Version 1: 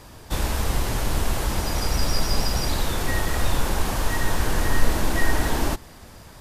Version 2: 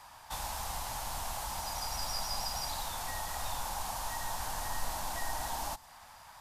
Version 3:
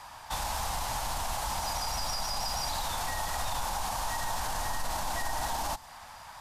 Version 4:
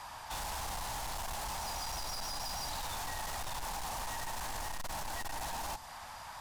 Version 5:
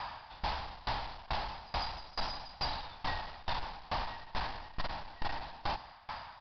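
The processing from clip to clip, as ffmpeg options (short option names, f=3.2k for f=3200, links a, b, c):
-filter_complex "[0:a]lowshelf=f=580:t=q:w=3:g=-13,acrossover=split=740|3700[a][b][c];[b]acompressor=threshold=-38dB:ratio=6[d];[a][d][c]amix=inputs=3:normalize=0,volume=-7dB"
-af "highshelf=f=11k:g=-7.5,alimiter=level_in=5.5dB:limit=-24dB:level=0:latency=1:release=22,volume=-5.5dB,volume=6.5dB"
-af "asoftclip=type=tanh:threshold=-37.5dB,volume=1dB"
-af "aecho=1:1:159:0.2,aresample=11025,aresample=44100,aeval=exprs='val(0)*pow(10,-24*if(lt(mod(2.3*n/s,1),2*abs(2.3)/1000),1-mod(2.3*n/s,1)/(2*abs(2.3)/1000),(mod(2.3*n/s,1)-2*abs(2.3)/1000)/(1-2*abs(2.3)/1000))/20)':c=same,volume=8.5dB"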